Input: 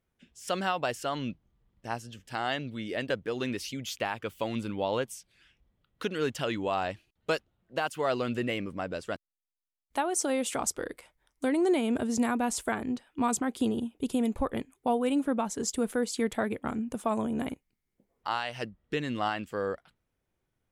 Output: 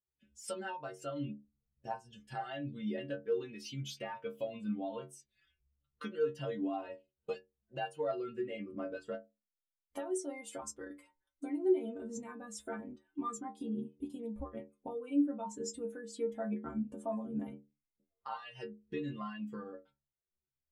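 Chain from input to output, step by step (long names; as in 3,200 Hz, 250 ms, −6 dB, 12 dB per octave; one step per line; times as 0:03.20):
downward compressor 6 to 1, threshold −39 dBFS, peak gain reduction 16 dB
stiff-string resonator 68 Hz, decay 0.5 s, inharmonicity 0.008
every bin expanded away from the loudest bin 1.5 to 1
level +16.5 dB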